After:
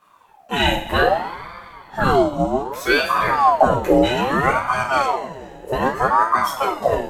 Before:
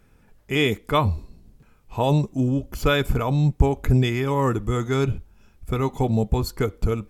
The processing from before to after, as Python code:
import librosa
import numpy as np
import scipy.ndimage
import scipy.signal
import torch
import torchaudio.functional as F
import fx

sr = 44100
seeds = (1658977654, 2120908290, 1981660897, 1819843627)

y = fx.steep_highpass(x, sr, hz=410.0, slope=36, at=(2.59, 3.09))
y = fx.rev_double_slope(y, sr, seeds[0], early_s=0.41, late_s=2.7, knee_db=-18, drr_db=-7.0)
y = fx.ring_lfo(y, sr, carrier_hz=780.0, swing_pct=45, hz=0.63)
y = F.gain(torch.from_numpy(y), -1.0).numpy()